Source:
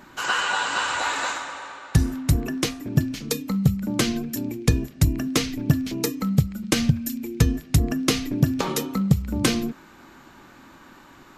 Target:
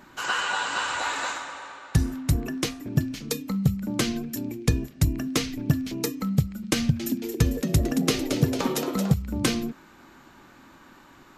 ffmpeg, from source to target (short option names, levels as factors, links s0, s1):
-filter_complex "[0:a]asettb=1/sr,asplit=3[s0][s1][s2];[s0]atrim=end=6.774[s3];[s1]atrim=start=6.77:end=9.14,asetpts=PTS-STARTPTS,afade=t=in:d=0.004:c=qsin,afade=t=out:st=2.366:d=0.004:c=qsin,asplit=8[s4][s5][s6][s7][s8][s9][s10][s11];[s5]adelay=224,afreqshift=110,volume=0.447[s12];[s6]adelay=448,afreqshift=220,volume=0.254[s13];[s7]adelay=672,afreqshift=330,volume=0.145[s14];[s8]adelay=896,afreqshift=440,volume=0.0832[s15];[s9]adelay=1120,afreqshift=550,volume=0.0473[s16];[s10]adelay=1344,afreqshift=660,volume=0.0269[s17];[s11]adelay=1568,afreqshift=770,volume=0.0153[s18];[s4][s12][s13][s14][s15][s16][s17][s18]amix=inputs=8:normalize=0,atrim=end_sample=104517[s19];[s2]atrim=start=9.136[s20];[s3][s19]acrossfade=d=0.004:c1=hsin:c2=qsin[s21];[s21][s20]acrossfade=d=0.004:c1=qsin:c2=hsin,volume=0.708"